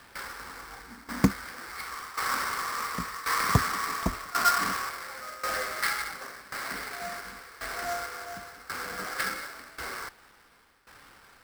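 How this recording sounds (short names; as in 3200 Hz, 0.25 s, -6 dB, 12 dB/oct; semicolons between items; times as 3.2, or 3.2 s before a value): a quantiser's noise floor 10-bit, dither none; tremolo saw down 0.92 Hz, depth 85%; aliases and images of a low sample rate 6700 Hz, jitter 20%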